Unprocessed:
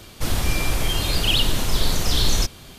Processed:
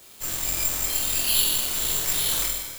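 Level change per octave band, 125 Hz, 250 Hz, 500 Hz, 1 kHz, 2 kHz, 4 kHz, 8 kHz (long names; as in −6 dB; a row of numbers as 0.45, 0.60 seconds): −16.0, −12.5, −9.0, −7.5, −5.0, −5.0, +5.0 decibels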